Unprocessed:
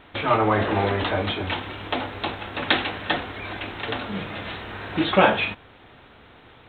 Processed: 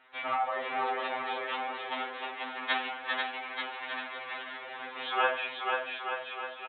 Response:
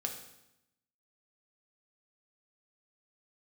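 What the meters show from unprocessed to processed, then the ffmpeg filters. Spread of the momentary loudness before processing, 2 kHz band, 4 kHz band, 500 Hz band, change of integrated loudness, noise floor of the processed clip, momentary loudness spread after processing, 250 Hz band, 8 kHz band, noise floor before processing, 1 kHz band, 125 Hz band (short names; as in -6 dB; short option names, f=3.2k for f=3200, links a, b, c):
13 LU, -6.0 dB, -9.0 dB, -12.0 dB, -9.0 dB, -44 dBFS, 9 LU, -20.5 dB, n/a, -50 dBFS, -6.0 dB, under -35 dB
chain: -filter_complex "[0:a]highpass=650,lowpass=2.8k,aecho=1:1:490|882|1196|1446|1647:0.631|0.398|0.251|0.158|0.1,asplit=2[a][b];[1:a]atrim=start_sample=2205[c];[b][c]afir=irnorm=-1:irlink=0,volume=-5dB[d];[a][d]amix=inputs=2:normalize=0,afftfilt=real='re*2.45*eq(mod(b,6),0)':imag='im*2.45*eq(mod(b,6),0)':win_size=2048:overlap=0.75,volume=-8.5dB"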